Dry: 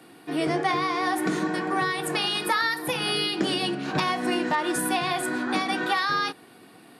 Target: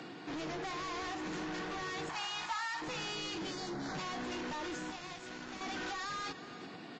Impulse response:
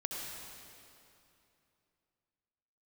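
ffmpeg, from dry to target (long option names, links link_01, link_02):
-filter_complex "[0:a]asplit=2[link_01][link_02];[link_02]asoftclip=type=tanh:threshold=-31.5dB,volume=-4dB[link_03];[link_01][link_03]amix=inputs=2:normalize=0,acompressor=threshold=-26dB:ratio=6,asettb=1/sr,asplit=3[link_04][link_05][link_06];[link_04]atrim=end=4.904[link_07];[link_05]atrim=start=4.9:end=5.61,asetpts=PTS-STARTPTS,afade=type=in:duration=0.004:curve=qsin,afade=type=out:start_time=0.706:duration=0.004:curve=qsin,acrusher=bits=3:mix=0:aa=0.5[link_08];[link_06]atrim=start=5.606[link_09];[link_07][link_08]acrossfade=duration=0.004:curve1=hsin:curve2=qsin[link_10];[link_10][link_09]acrossfade=duration=0.004:curve1=qsin:curve2=hsin,equalizer=frequency=170:width_type=o:width=0.27:gain=4,asoftclip=type=hard:threshold=-35dB,alimiter=level_in=21dB:limit=-24dB:level=0:latency=1:release=480,volume=-21dB,asettb=1/sr,asplit=3[link_11][link_12][link_13];[link_11]atrim=end=2.094[link_14];[link_12]atrim=start=2.09:end=2.82,asetpts=PTS-STARTPTS,afade=type=in:duration=0.004:curve=qsin,afade=type=out:start_time=0.726:duration=0.004:curve=qsin,lowshelf=frequency=640:width_type=q:width=3:gain=-10[link_15];[link_13]atrim=start=2.816[link_16];[link_14][link_15]acrossfade=duration=0.004:curve1=hsin:curve2=qsin[link_17];[link_17][link_16]acrossfade=duration=0.004:curve1=qsin:curve2=hsin,asettb=1/sr,asplit=3[link_18][link_19][link_20];[link_18]atrim=end=3.514[link_21];[link_19]atrim=start=3.51:end=3.95,asetpts=PTS-STARTPTS,afade=type=in:duration=0.004:curve=qsin,afade=type=out:start_time=0.436:duration=0.004:curve=qsin,asuperstop=centerf=2800:order=4:qfactor=1.7[link_22];[link_20]atrim=start=3.946[link_23];[link_21][link_22]acrossfade=duration=0.004:curve1=hsin:curve2=qsin[link_24];[link_24][link_23]acrossfade=duration=0.004:curve1=qsin:curve2=hsin,aecho=1:1:363:0.178,volume=6dB" -ar 16000 -c:a libvorbis -b:a 32k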